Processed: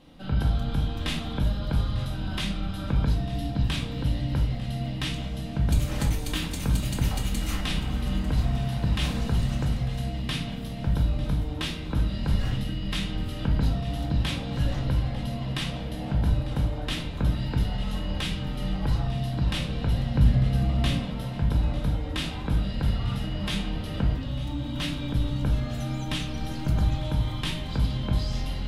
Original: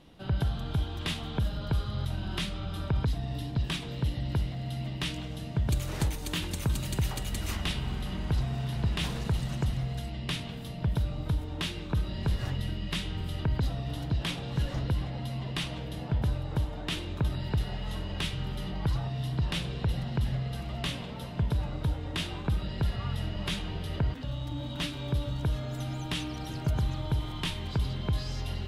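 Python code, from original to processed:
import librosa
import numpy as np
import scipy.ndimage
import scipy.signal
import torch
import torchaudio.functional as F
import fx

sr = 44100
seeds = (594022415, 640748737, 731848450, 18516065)

y = fx.low_shelf(x, sr, hz=410.0, db=7.0, at=(20.15, 20.98))
y = fx.echo_feedback(y, sr, ms=898, feedback_pct=54, wet_db=-17.0)
y = fx.room_shoebox(y, sr, seeds[0], volume_m3=430.0, walls='furnished', distance_m=2.1)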